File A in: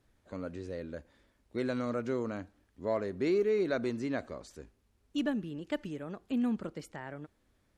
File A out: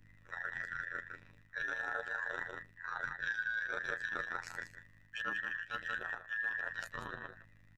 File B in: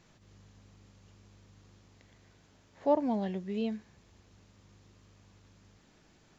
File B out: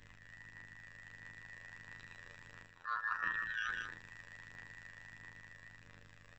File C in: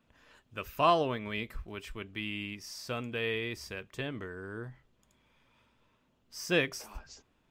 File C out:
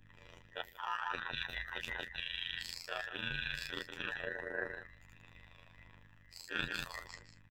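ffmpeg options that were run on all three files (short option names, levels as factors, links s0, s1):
-af "afftfilt=real='real(if(between(b,1,1012),(2*floor((b-1)/92)+1)*92-b,b),0)':imag='imag(if(between(b,1,1012),(2*floor((b-1)/92)+1)*92-b,b),0)*if(between(b,1,1012),-1,1)':win_size=2048:overlap=0.75,dynaudnorm=f=160:g=17:m=1.58,equalizer=f=100:t=o:w=0.33:g=3,equalizer=f=200:t=o:w=0.33:g=-8,equalizer=f=500:t=o:w=0.33:g=8,equalizer=f=1000:t=o:w=0.33:g=5,equalizer=f=2500:t=o:w=0.33:g=12,equalizer=f=10000:t=o:w=0.33:g=-6,asoftclip=type=tanh:threshold=0.316,aecho=1:1:175:0.335,afftfilt=real='hypot(re,im)*cos(PI*b)':imag='0':win_size=2048:overlap=0.75,lowshelf=f=290:g=5.5,bandreject=f=50:t=h:w=6,bandreject=f=100:t=h:w=6,bandreject=f=150:t=h:w=6,bandreject=f=200:t=h:w=6,bandreject=f=250:t=h:w=6,bandreject=f=300:t=h:w=6,aeval=exprs='val(0)+0.000708*(sin(2*PI*50*n/s)+sin(2*PI*2*50*n/s)/2+sin(2*PI*3*50*n/s)/3+sin(2*PI*4*50*n/s)/4+sin(2*PI*5*50*n/s)/5)':c=same,areverse,acompressor=threshold=0.0141:ratio=6,areverse,aeval=exprs='val(0)*sin(2*PI*56*n/s)':c=same,aphaser=in_gain=1:out_gain=1:delay=1.8:decay=0.29:speed=1.5:type=sinusoidal,volume=1.5"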